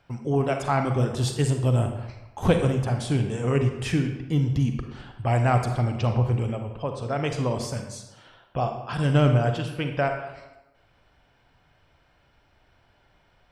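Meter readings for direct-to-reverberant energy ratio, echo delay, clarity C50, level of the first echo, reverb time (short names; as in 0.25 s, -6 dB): 5.0 dB, none, 6.5 dB, none, 1.0 s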